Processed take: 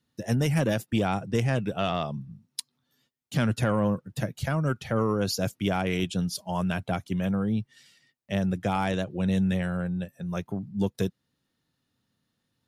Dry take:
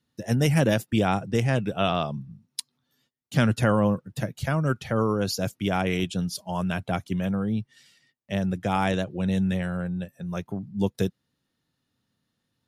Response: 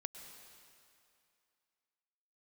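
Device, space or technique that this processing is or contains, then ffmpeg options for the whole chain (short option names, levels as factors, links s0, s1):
soft clipper into limiter: -af "asoftclip=type=tanh:threshold=0.316,alimiter=limit=0.168:level=0:latency=1:release=356"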